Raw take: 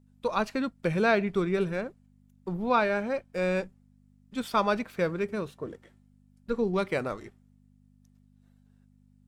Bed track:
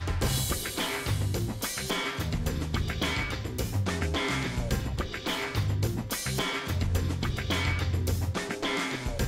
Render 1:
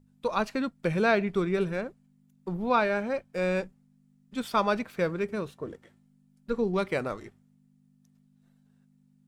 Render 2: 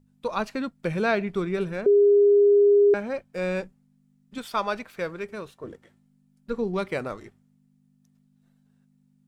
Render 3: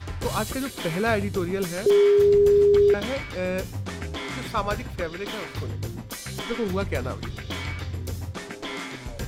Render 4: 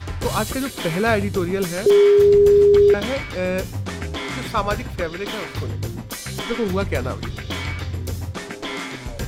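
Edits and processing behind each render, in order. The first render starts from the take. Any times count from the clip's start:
hum removal 50 Hz, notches 2
0:01.86–0:02.94: beep over 407 Hz −13.5 dBFS; 0:04.38–0:05.64: parametric band 170 Hz −7 dB 2.6 octaves
mix in bed track −3.5 dB
level +4.5 dB

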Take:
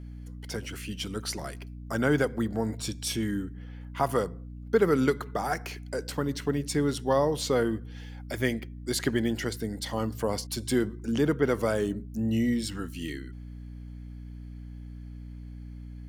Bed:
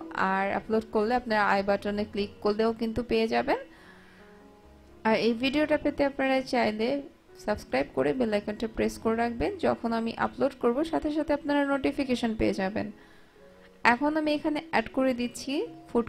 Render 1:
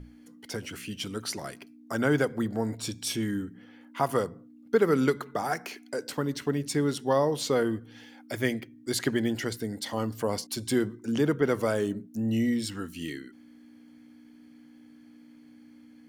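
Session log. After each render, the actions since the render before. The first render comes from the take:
mains-hum notches 60/120/180 Hz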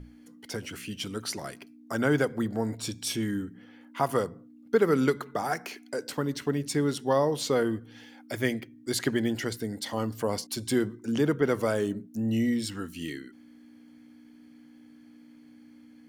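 no processing that can be heard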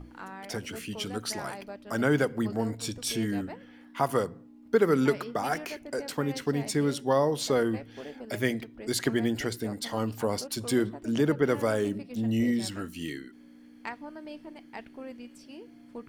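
mix in bed −16.5 dB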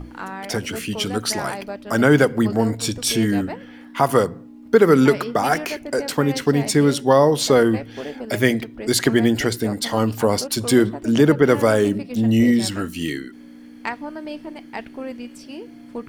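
level +10.5 dB
brickwall limiter −3 dBFS, peak gain reduction 2 dB

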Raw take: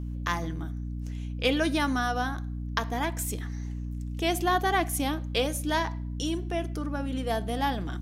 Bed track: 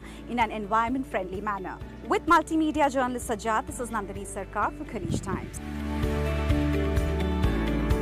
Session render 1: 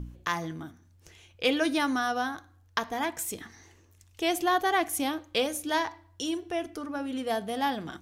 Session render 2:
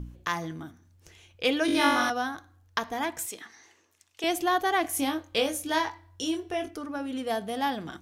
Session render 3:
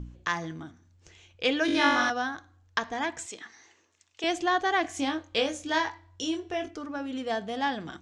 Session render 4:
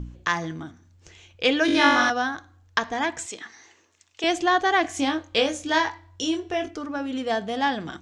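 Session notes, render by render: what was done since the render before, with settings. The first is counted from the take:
hum removal 60 Hz, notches 5
0:01.66–0:02.10: flutter between parallel walls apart 3.6 metres, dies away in 0.97 s; 0:03.26–0:04.24: meter weighting curve A; 0:04.82–0:06.71: double-tracking delay 22 ms −5 dB
Chebyshev low-pass filter 7,500 Hz, order 4; dynamic equaliser 1,700 Hz, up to +5 dB, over −47 dBFS, Q 6.1
level +5 dB

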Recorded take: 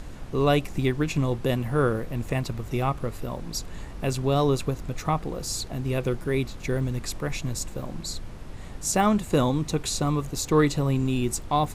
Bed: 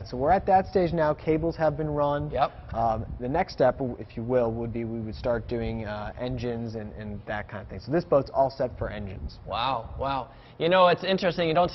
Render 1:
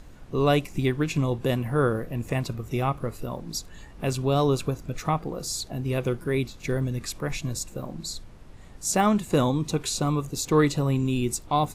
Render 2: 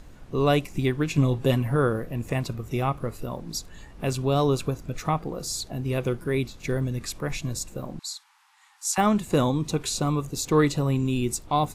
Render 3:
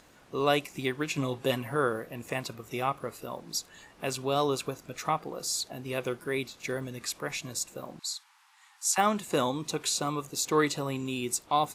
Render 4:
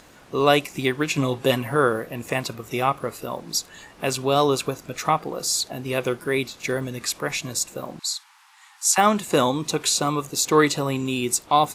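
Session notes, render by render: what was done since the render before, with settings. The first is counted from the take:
noise reduction from a noise print 8 dB
0:01.17–0:01.76: comb filter 7.3 ms; 0:07.99–0:08.98: linear-phase brick-wall band-pass 770–13,000 Hz
high-pass filter 610 Hz 6 dB per octave
level +8 dB; brickwall limiter −3 dBFS, peak gain reduction 1.5 dB

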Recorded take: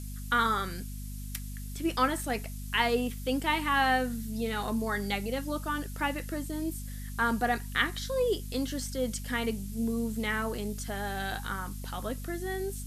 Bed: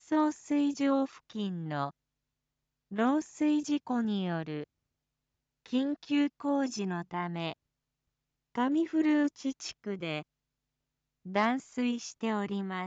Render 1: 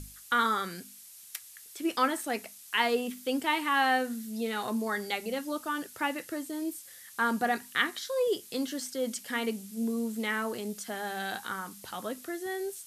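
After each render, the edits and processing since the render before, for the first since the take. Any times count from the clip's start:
mains-hum notches 50/100/150/200/250 Hz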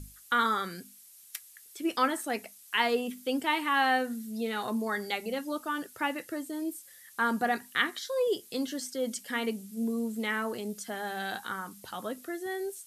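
broadband denoise 6 dB, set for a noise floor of −51 dBFS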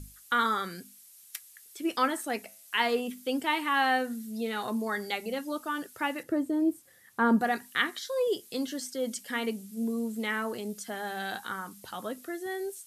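0:02.39–0:03.00: hum removal 108.7 Hz, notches 31
0:06.23–0:07.41: tilt shelving filter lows +9 dB, about 1,400 Hz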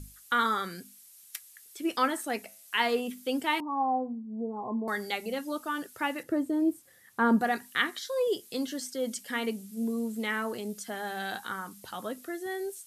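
0:03.60–0:04.88: Chebyshev low-pass with heavy ripple 1,100 Hz, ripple 3 dB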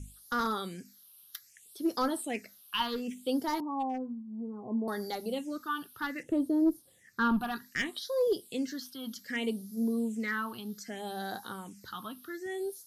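asymmetric clip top −22.5 dBFS
all-pass phaser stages 6, 0.64 Hz, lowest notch 520–2,600 Hz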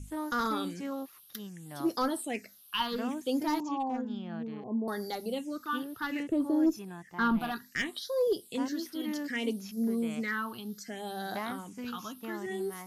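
mix in bed −9.5 dB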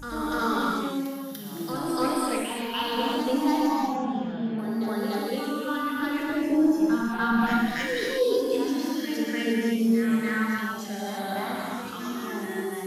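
backwards echo 293 ms −7 dB
reverb whose tail is shaped and stops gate 380 ms flat, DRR −4 dB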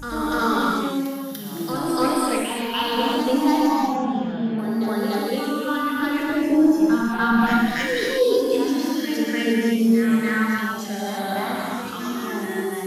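level +5 dB

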